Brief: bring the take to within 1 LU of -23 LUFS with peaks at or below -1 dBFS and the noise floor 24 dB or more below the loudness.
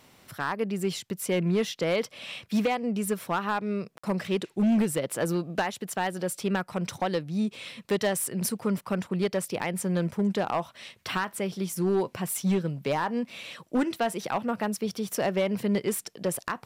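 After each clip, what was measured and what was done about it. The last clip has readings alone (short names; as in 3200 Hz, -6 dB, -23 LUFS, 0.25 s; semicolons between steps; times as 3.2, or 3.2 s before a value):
clipped 1.6%; flat tops at -19.5 dBFS; dropouts 1; longest dropout 55 ms; loudness -29.0 LUFS; peak -19.5 dBFS; loudness target -23.0 LUFS
-> clip repair -19.5 dBFS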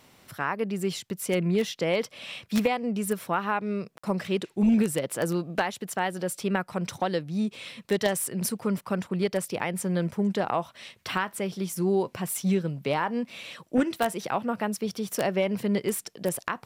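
clipped 0.0%; dropouts 1; longest dropout 55 ms
-> interpolate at 3.98, 55 ms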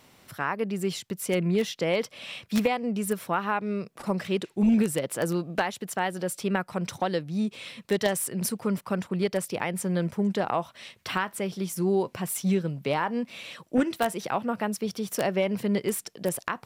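dropouts 0; loudness -28.5 LUFS; peak -10.5 dBFS; loudness target -23.0 LUFS
-> gain +5.5 dB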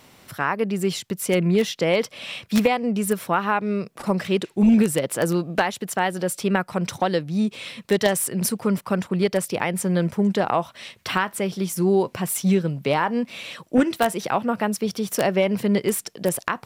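loudness -23.0 LUFS; peak -5.0 dBFS; noise floor -54 dBFS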